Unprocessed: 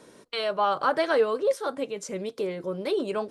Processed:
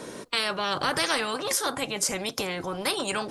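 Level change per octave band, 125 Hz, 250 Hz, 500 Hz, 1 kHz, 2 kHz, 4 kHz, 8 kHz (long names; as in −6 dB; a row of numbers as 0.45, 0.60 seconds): can't be measured, −0.5 dB, −6.5 dB, −2.0 dB, +4.5 dB, +9.0 dB, +15.5 dB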